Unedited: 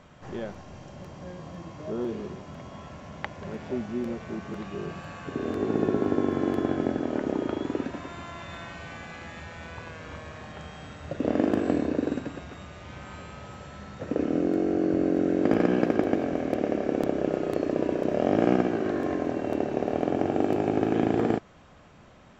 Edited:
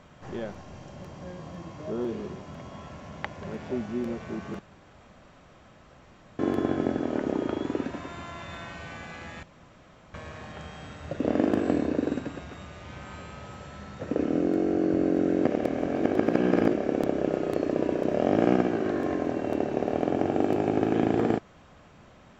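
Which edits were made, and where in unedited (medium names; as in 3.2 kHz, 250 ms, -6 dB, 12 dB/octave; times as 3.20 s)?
4.59–6.39 s: room tone
9.43–10.14 s: room tone
15.46–16.73 s: reverse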